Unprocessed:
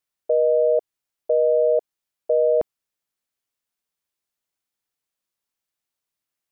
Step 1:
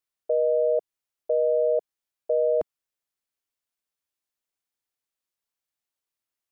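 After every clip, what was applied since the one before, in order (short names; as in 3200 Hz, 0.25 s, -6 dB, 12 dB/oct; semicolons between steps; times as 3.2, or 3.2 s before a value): bell 170 Hz -5 dB 0.71 oct; gain -4 dB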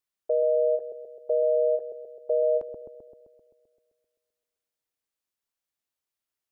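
dark delay 0.13 s, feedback 63%, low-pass 460 Hz, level -6 dB; ending taper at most 260 dB/s; gain -1 dB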